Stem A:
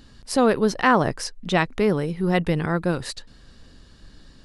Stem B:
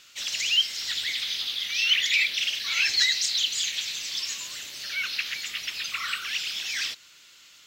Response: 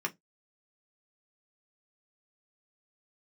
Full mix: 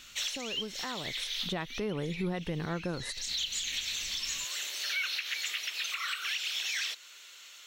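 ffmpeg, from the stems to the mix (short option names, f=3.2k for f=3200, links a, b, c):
-filter_complex "[0:a]acompressor=threshold=-19dB:ratio=6,volume=-5.5dB,afade=t=in:st=1.09:d=0.7:silence=0.281838,asplit=2[a][b];[1:a]acompressor=threshold=-27dB:ratio=6,highpass=f=380:w=0.5412,highpass=f=380:w=1.3066,volume=2dB[c];[b]apad=whole_len=338198[d];[c][d]sidechaincompress=threshold=-50dB:ratio=5:attack=48:release=216[e];[a][e]amix=inputs=2:normalize=0,bandreject=f=4.9k:w=8,alimiter=limit=-23.5dB:level=0:latency=1:release=253"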